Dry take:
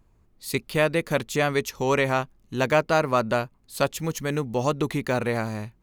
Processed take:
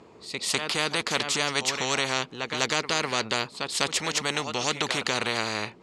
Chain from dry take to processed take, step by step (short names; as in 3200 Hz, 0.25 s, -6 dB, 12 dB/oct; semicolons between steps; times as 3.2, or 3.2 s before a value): speaker cabinet 270–6900 Hz, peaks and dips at 440 Hz +7 dB, 1600 Hz -5 dB, 6200 Hz -7 dB; pre-echo 0.2 s -18.5 dB; spectral compressor 4:1